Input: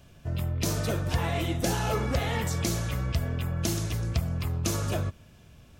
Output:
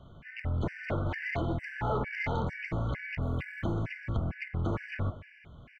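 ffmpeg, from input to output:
ffmpeg -i in.wav -filter_complex "[0:a]asettb=1/sr,asplit=3[link_01][link_02][link_03];[link_01]atrim=end=1.154[link_04];[link_02]atrim=start=1.15:end=2.02,asetpts=PTS-STARTPTS,afade=type=in:duration=0.004:curve=qsin,afade=type=out:start_time=0.866:duration=0.004:curve=qsin,aemphasis=mode=production:type=75fm[link_05];[link_03]atrim=start=2.016[link_06];[link_04][link_05]acrossfade=duration=0.004:curve1=hsin:curve2=qsin[link_07];[link_07][link_06]acrossfade=duration=0.004:curve1=qsin:curve2=hsin,acrossover=split=720|1200[link_08][link_09][link_10];[link_08]aeval=exprs='clip(val(0),-1,0.02)':channel_layout=same[link_11];[link_10]acompressor=threshold=-46dB:ratio=8[link_12];[link_11][link_09][link_12]amix=inputs=3:normalize=0,lowpass=frequency=2100:width_type=q:width=6.3,aeval=exprs='0.168*(cos(1*acos(clip(val(0)/0.168,-1,1)))-cos(1*PI/2))+0.0237*(cos(5*acos(clip(val(0)/0.168,-1,1)))-cos(5*PI/2))':channel_layout=same,asettb=1/sr,asplit=3[link_13][link_14][link_15];[link_13]atrim=end=3.224[link_16];[link_14]atrim=start=3.22:end=3.72,asetpts=PTS-STARTPTS,afade=type=in:duration=0.004:curve=qsin,afade=type=out:start_time=0.496:duration=0.004:curve=qsin,aeval=exprs='sgn(val(0))*max(abs(val(0))-0.00158,0)':channel_layout=same[link_17];[link_15]atrim=start=3.716[link_18];[link_16][link_17]acrossfade=duration=0.004:curve1=hsin:curve2=qsin[link_19];[link_19][link_18]acrossfade=duration=0.004:curve1=qsin:curve2=hsin,asplit=2[link_20][link_21];[link_21]adelay=174.9,volume=-17dB,highshelf=frequency=4000:gain=-3.94[link_22];[link_20][link_22]amix=inputs=2:normalize=0,afftfilt=real='re*gt(sin(2*PI*2.2*pts/sr)*(1-2*mod(floor(b*sr/1024/1500),2)),0)':imag='im*gt(sin(2*PI*2.2*pts/sr)*(1-2*mod(floor(b*sr/1024/1500),2)),0)':win_size=1024:overlap=0.75,volume=-2.5dB" out.wav

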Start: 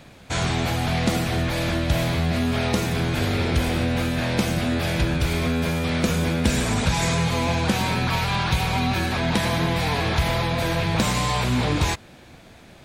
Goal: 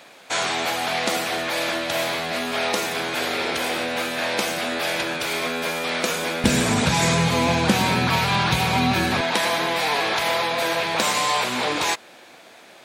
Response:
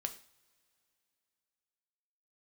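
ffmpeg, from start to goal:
-af "asetnsamples=nb_out_samples=441:pad=0,asendcmd='6.44 highpass f 140;9.21 highpass f 450',highpass=490,volume=4dB"

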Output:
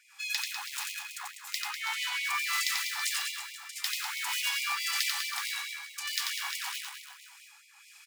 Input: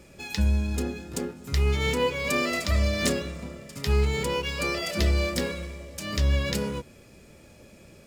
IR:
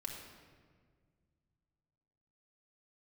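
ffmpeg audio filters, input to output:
-filter_complex "[0:a]asplit=2[link_01][link_02];[link_02]aeval=exprs='(mod(18.8*val(0)+1,2)-1)/18.8':channel_layout=same,volume=-3.5dB[link_03];[link_01][link_03]amix=inputs=2:normalize=0,acrossover=split=1600[link_04][link_05];[link_04]aeval=exprs='val(0)*(1-0.7/2+0.7/2*cos(2*PI*1.7*n/s))':channel_layout=same[link_06];[link_05]aeval=exprs='val(0)*(1-0.7/2-0.7/2*cos(2*PI*1.7*n/s))':channel_layout=same[link_07];[link_06][link_07]amix=inputs=2:normalize=0,asettb=1/sr,asplit=3[link_08][link_09][link_10];[link_08]atrim=end=1.624[link_11];[link_09]atrim=start=1.62:end=2.25,asetpts=PTS-STARTPTS,afade=type=in:duration=0.004:curve=qsin,afade=type=out:start_time=0.626:duration=0.004:curve=qsin,aemphasis=mode=reproduction:type=cd[link_12];[link_10]atrim=start=2.246[link_13];[link_11][link_12]acrossfade=duration=0.004:curve1=hsin:curve2=qsin[link_14];[link_14][link_13]acrossfade=duration=0.004:curve1=qsin:curve2=hsin,aecho=1:1:90|198|327.6|483.1|669.7:0.631|0.398|0.251|0.158|0.1,afftfilt=real='re*gte(b*sr/1024,720*pow(2000/720,0.5+0.5*sin(2*PI*4.6*pts/sr)))':imag='im*gte(b*sr/1024,720*pow(2000/720,0.5+0.5*sin(2*PI*4.6*pts/sr)))':win_size=1024:overlap=0.75"

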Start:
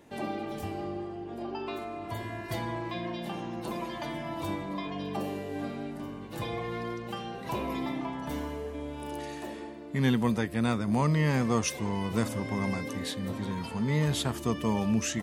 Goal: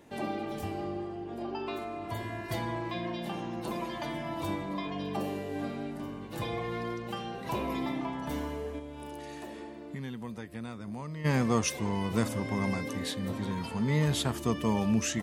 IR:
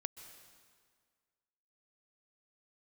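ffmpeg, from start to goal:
-filter_complex "[0:a]asplit=3[link_01][link_02][link_03];[link_01]afade=type=out:start_time=8.78:duration=0.02[link_04];[link_02]acompressor=threshold=-39dB:ratio=4,afade=type=in:start_time=8.78:duration=0.02,afade=type=out:start_time=11.24:duration=0.02[link_05];[link_03]afade=type=in:start_time=11.24:duration=0.02[link_06];[link_04][link_05][link_06]amix=inputs=3:normalize=0"

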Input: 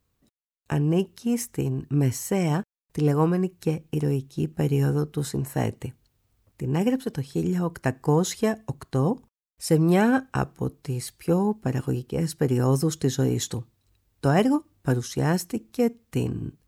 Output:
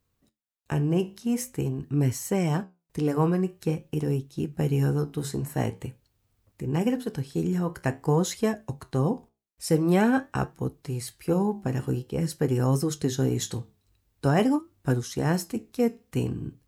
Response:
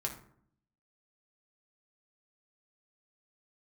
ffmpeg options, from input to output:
-af "flanger=delay=8.2:depth=9.9:regen=-70:speed=0.47:shape=triangular,volume=2.5dB"

